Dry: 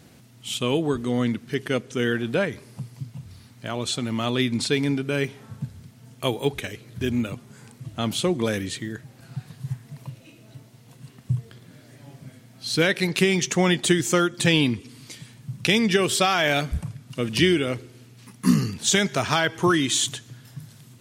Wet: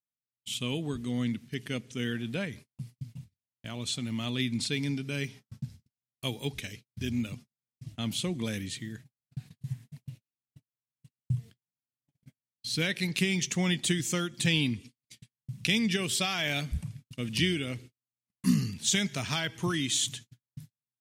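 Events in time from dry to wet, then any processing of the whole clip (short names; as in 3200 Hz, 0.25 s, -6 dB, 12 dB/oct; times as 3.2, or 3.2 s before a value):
4.81–7.92 bell 5200 Hz +6.5 dB 0.48 oct
whole clip: gate -38 dBFS, range -51 dB; band shelf 720 Hz -8.5 dB 2.6 oct; gain -5.5 dB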